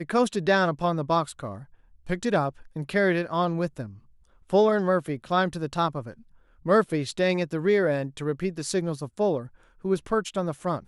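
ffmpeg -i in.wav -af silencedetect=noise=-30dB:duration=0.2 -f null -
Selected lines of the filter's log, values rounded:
silence_start: 1.55
silence_end: 2.10 | silence_duration: 0.55
silence_start: 2.49
silence_end: 2.76 | silence_duration: 0.27
silence_start: 3.86
silence_end: 4.50 | silence_duration: 0.64
silence_start: 6.10
silence_end: 6.66 | silence_duration: 0.56
silence_start: 9.40
silence_end: 9.85 | silence_duration: 0.44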